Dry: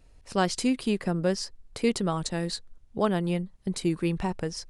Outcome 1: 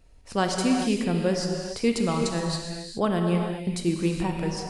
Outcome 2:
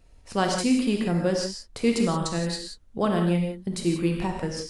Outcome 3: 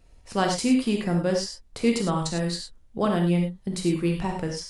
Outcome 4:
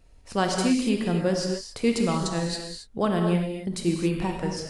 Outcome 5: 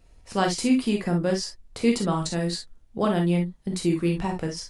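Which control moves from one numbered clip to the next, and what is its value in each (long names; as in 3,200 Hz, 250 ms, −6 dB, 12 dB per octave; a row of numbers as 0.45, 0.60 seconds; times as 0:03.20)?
reverb whose tail is shaped and stops, gate: 450, 200, 130, 300, 80 milliseconds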